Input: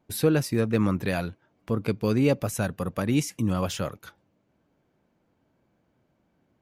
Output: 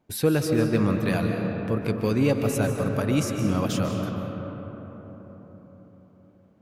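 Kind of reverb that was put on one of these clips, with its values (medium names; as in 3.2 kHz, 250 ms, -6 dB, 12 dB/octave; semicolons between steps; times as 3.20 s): algorithmic reverb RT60 4.7 s, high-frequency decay 0.35×, pre-delay 110 ms, DRR 3 dB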